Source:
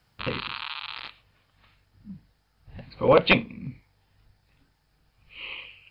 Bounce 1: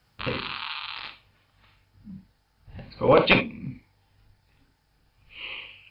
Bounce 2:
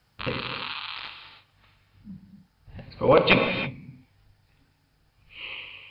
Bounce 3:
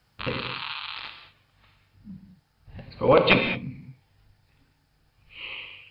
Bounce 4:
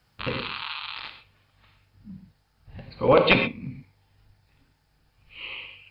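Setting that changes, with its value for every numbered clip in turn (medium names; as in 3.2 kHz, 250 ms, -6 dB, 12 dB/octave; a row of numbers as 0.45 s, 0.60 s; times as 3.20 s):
gated-style reverb, gate: 90 ms, 350 ms, 240 ms, 150 ms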